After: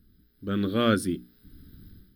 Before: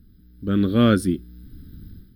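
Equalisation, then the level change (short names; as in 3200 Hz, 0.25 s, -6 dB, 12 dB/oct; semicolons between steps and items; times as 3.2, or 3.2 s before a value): low shelf 350 Hz -7 dB; notches 60/120/180/240/300 Hz; -1.5 dB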